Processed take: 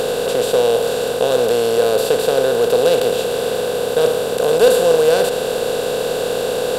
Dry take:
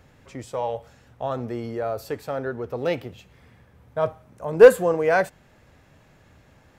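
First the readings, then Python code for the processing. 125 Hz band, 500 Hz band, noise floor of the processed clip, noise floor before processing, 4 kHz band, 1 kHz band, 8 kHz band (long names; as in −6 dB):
+3.5 dB, +8.0 dB, −22 dBFS, −56 dBFS, +21.0 dB, +6.5 dB, can't be measured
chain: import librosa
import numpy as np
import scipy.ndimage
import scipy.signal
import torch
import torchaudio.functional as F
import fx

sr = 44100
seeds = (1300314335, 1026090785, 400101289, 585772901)

y = fx.bin_compress(x, sr, power=0.2)
y = fx.high_shelf_res(y, sr, hz=2700.0, db=9.0, q=3.0)
y = F.gain(torch.from_numpy(y), -4.5).numpy()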